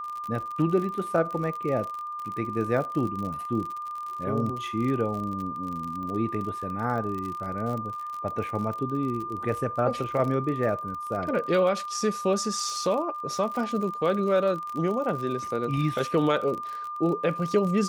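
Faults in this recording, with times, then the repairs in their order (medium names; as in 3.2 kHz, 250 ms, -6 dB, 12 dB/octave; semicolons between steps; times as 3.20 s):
crackle 46 per s -32 dBFS
whine 1.2 kHz -32 dBFS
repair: de-click; band-stop 1.2 kHz, Q 30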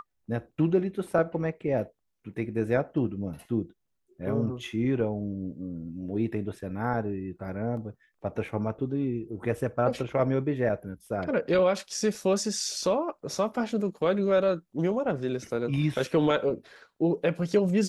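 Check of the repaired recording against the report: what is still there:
nothing left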